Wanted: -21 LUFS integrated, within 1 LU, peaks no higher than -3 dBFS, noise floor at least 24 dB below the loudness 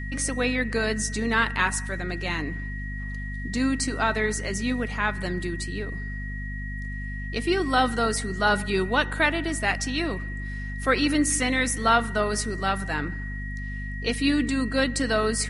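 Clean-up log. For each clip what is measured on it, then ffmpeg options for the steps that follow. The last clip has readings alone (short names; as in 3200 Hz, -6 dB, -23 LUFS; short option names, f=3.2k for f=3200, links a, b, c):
hum 50 Hz; harmonics up to 250 Hz; hum level -30 dBFS; steady tone 1900 Hz; tone level -37 dBFS; loudness -26.0 LUFS; peak -8.0 dBFS; loudness target -21.0 LUFS
-> -af "bandreject=f=50:t=h:w=4,bandreject=f=100:t=h:w=4,bandreject=f=150:t=h:w=4,bandreject=f=200:t=h:w=4,bandreject=f=250:t=h:w=4"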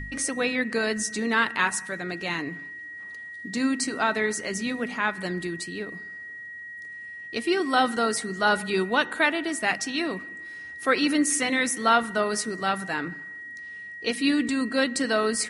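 hum none; steady tone 1900 Hz; tone level -37 dBFS
-> -af "bandreject=f=1.9k:w=30"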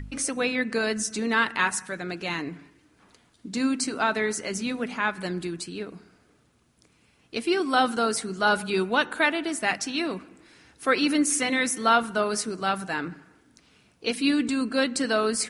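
steady tone none; loudness -26.0 LUFS; peak -8.5 dBFS; loudness target -21.0 LUFS
-> -af "volume=5dB"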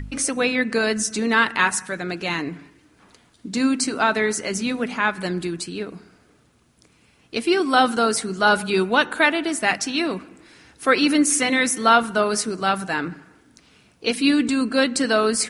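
loudness -21.0 LUFS; peak -3.5 dBFS; noise floor -58 dBFS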